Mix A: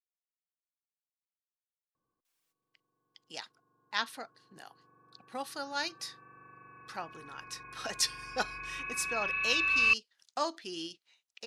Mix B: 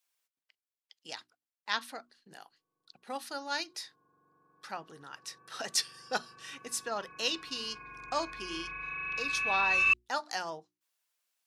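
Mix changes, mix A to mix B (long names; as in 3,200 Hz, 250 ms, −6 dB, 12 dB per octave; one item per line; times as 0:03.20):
speech: entry −2.25 s
master: add mains-hum notches 60/120/180/240/300/360 Hz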